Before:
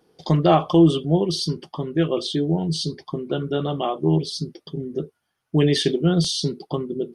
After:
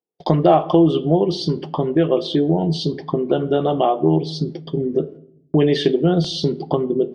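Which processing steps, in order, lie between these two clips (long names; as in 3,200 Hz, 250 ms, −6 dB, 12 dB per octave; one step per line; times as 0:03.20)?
noise gate −42 dBFS, range −41 dB
drawn EQ curve 130 Hz 0 dB, 710 Hz +9 dB, 1,200 Hz +2 dB
on a send at −16 dB: convolution reverb RT60 0.65 s, pre-delay 6 ms
on the sum: downward compressor 2 to 1, threshold −22 dBFS, peak gain reduction 9.5 dB
low-pass filter 3,400 Hz 12 dB per octave
level +5 dB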